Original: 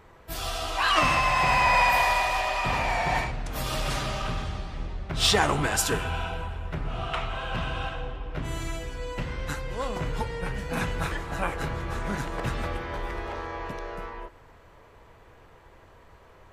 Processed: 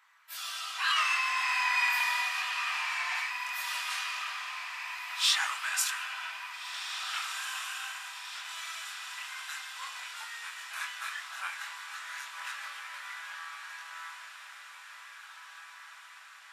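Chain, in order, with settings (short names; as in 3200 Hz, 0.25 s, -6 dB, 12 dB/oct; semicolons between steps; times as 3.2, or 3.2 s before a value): inverse Chebyshev high-pass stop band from 360 Hz, stop band 60 dB; chorus voices 2, 0.16 Hz, delay 24 ms, depth 1.9 ms; diffused feedback echo 1.771 s, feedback 63%, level -8.5 dB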